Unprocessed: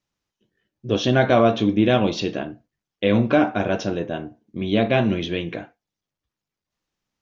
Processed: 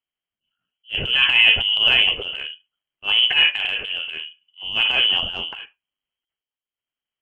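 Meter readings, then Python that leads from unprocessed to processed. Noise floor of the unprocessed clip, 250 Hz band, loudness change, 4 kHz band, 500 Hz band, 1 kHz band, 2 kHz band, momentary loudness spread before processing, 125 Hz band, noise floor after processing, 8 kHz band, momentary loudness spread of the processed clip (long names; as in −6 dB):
below −85 dBFS, −24.0 dB, +4.0 dB, +17.0 dB, −18.0 dB, −9.0 dB, +9.5 dB, 15 LU, −16.5 dB, below −85 dBFS, can't be measured, 18 LU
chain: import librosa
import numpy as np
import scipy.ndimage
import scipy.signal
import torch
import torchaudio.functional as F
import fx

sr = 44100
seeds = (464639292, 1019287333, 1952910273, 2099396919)

y = fx.freq_invert(x, sr, carrier_hz=3200)
y = fx.transient(y, sr, attack_db=-12, sustain_db=8)
y = fx.upward_expand(y, sr, threshold_db=-39.0, expansion=1.5)
y = y * librosa.db_to_amplitude(3.0)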